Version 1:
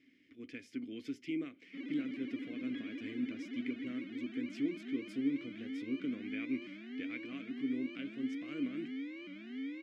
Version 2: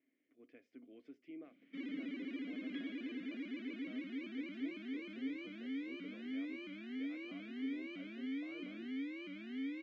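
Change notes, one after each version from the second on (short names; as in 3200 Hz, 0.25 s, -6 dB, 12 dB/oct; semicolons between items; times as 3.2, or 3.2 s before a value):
speech: add band-pass 690 Hz, Q 2.6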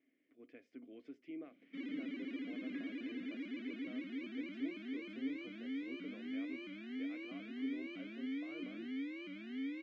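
speech +3.5 dB; second sound: add brick-wall FIR low-pass 2600 Hz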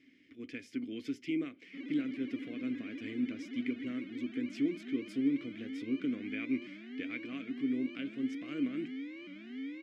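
speech: remove band-pass 690 Hz, Q 2.6; second sound -4.5 dB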